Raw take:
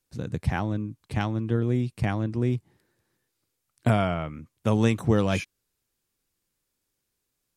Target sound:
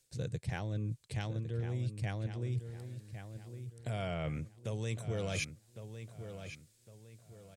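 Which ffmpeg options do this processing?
-filter_complex "[0:a]alimiter=limit=-18dB:level=0:latency=1:release=483,equalizer=f=125:t=o:w=1:g=9,equalizer=f=250:t=o:w=1:g=-7,equalizer=f=500:t=o:w=1:g=8,equalizer=f=1k:t=o:w=1:g=-5,equalizer=f=2k:t=o:w=1:g=4,equalizer=f=4k:t=o:w=1:g=6,equalizer=f=8k:t=o:w=1:g=12,areverse,acompressor=threshold=-35dB:ratio=10,areverse,bandreject=f=1.3k:w=21,asplit=2[a][b];[b]adelay=1107,lowpass=f=3.7k:p=1,volume=-9.5dB,asplit=2[c][d];[d]adelay=1107,lowpass=f=3.7k:p=1,volume=0.35,asplit=2[e][f];[f]adelay=1107,lowpass=f=3.7k:p=1,volume=0.35,asplit=2[g][h];[h]adelay=1107,lowpass=f=3.7k:p=1,volume=0.35[i];[a][c][e][g][i]amix=inputs=5:normalize=0,volume=1.5dB"

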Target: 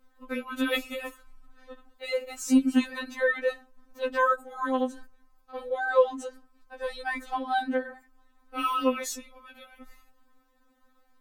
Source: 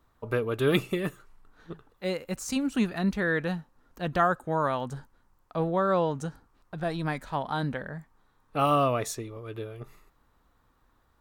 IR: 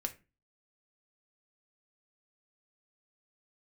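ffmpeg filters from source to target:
-filter_complex "[0:a]asplit=2[a][b];[1:a]atrim=start_sample=2205,asetrate=66150,aresample=44100[c];[b][c]afir=irnorm=-1:irlink=0,volume=-11.5dB[d];[a][d]amix=inputs=2:normalize=0,afftfilt=real='re*3.46*eq(mod(b,12),0)':imag='im*3.46*eq(mod(b,12),0)':win_size=2048:overlap=0.75,volume=2dB"

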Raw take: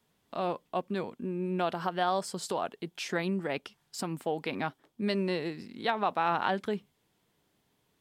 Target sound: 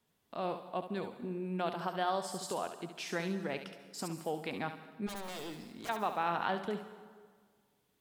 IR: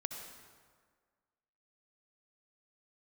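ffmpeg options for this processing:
-filter_complex "[0:a]asplit=3[a][b][c];[a]afade=t=out:st=5.06:d=0.02[d];[b]aeval=exprs='0.0211*(abs(mod(val(0)/0.0211+3,4)-2)-1)':c=same,afade=t=in:st=5.06:d=0.02,afade=t=out:st=5.88:d=0.02[e];[c]afade=t=in:st=5.88:d=0.02[f];[d][e][f]amix=inputs=3:normalize=0,asplit=2[g][h];[h]aemphasis=mode=production:type=50kf[i];[1:a]atrim=start_sample=2205,adelay=70[j];[i][j]afir=irnorm=-1:irlink=0,volume=-9dB[k];[g][k]amix=inputs=2:normalize=0,volume=-5dB"

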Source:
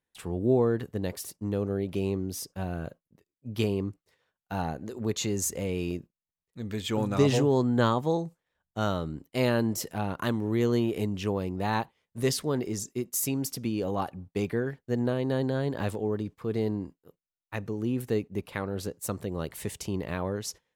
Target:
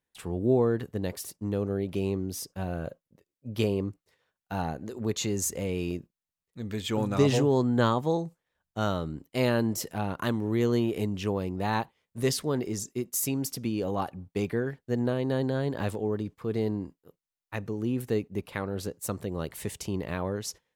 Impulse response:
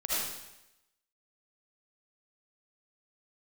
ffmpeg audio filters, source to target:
-filter_complex "[0:a]asettb=1/sr,asplit=3[a][b][c];[a]atrim=end=2.674[d];[b]atrim=start=2.67:end=3.89,asetpts=PTS-STARTPTS,afade=t=in:d=0.004:c=qsin,afade=t=out:st=1.216:d=0.004:c=qsin,equalizer=f=540:t=o:w=0.34:g=6.5[e];[c]atrim=start=3.886[f];[d][e]acrossfade=d=0.004:c1=hsin:c2=qsin[g];[g][f]acrossfade=d=0.004:c1=qsin:c2=hsin"

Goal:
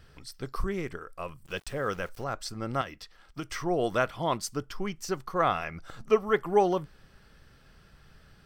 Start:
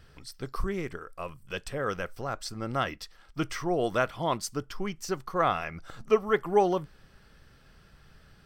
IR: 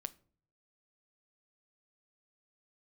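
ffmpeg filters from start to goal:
-filter_complex "[0:a]asettb=1/sr,asplit=3[a][b][c];[a]atrim=end=1.454[d];[b]atrim=start=1.45:end=2.24,asetpts=PTS-STARTPTS,afade=t=in:d=0.004:c=qsin,afade=t=out:st=0.786:d=0.004:c=qsin,aeval=exprs='val(0)*gte(abs(val(0)),0.00355)':c=same[e];[c]atrim=start=2.236[f];[d][e]acrossfade=d=0.004:c1=hsin:c2=qsin[g];[g][f]acrossfade=d=0.004:c1=qsin:c2=hsin,asettb=1/sr,asplit=3[h][i][j];[h]atrim=end=2.814[k];[i]atrim=start=2.81:end=3.52,asetpts=PTS-STARTPTS,afade=t=in:d=0.004:c=qsin,afade=t=out:st=0.706:d=0.004:c=qsin,acrossover=split=120|4600[l][m][n];[l]acompressor=threshold=-53dB:ratio=4[o];[m]acompressor=threshold=-35dB:ratio=4[p];[n]acompressor=threshold=-53dB:ratio=4[q];[o][p][q]amix=inputs=3:normalize=0[r];[j]atrim=start=3.516[s];[k][r]acrossfade=d=0.004:c1=hsin:c2=qsin[t];[t][s]acrossfade=d=0.004:c1=qsin:c2=hsin"

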